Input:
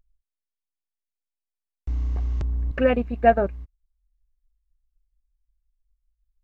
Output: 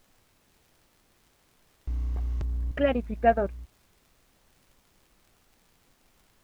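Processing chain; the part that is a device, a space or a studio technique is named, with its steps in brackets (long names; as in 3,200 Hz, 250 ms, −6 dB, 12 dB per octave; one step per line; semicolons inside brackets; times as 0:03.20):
warped LP (wow of a warped record 33 1/3 rpm, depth 160 cents; surface crackle; pink noise bed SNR 33 dB)
level −4.5 dB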